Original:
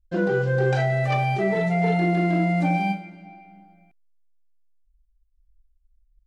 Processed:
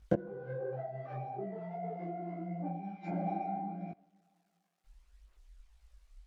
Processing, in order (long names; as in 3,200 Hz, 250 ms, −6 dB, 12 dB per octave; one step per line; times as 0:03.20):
running median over 15 samples
high-pass filter 340 Hz 6 dB per octave
gate with flip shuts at −27 dBFS, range −33 dB
phase shifter 0.75 Hz, delay 1.9 ms, feedback 38%
in parallel at +3 dB: downward compressor, threshold −59 dBFS, peak gain reduction 22 dB
on the sum: treble cut that deepens with the level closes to 810 Hz, closed at −49 dBFS
on a send at −22.5 dB: convolution reverb RT60 2.1 s, pre-delay 33 ms
on the sum: micro pitch shift up and down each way 53 cents
level +17 dB